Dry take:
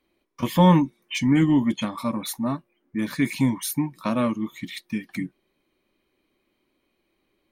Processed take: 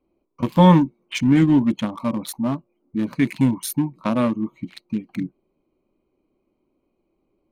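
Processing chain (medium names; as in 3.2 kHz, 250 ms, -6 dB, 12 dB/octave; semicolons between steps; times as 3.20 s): local Wiener filter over 25 samples; trim +3.5 dB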